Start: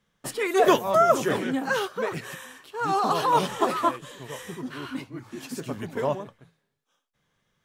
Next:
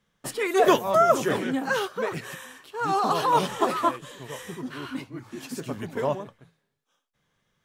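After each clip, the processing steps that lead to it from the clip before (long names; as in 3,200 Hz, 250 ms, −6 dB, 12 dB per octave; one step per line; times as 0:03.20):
no processing that can be heard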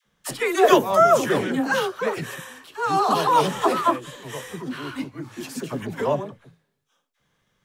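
all-pass dispersion lows, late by 56 ms, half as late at 680 Hz
level +3.5 dB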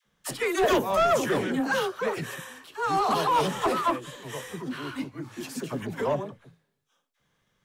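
soft clipping −14.5 dBFS, distortion −11 dB
level −2.5 dB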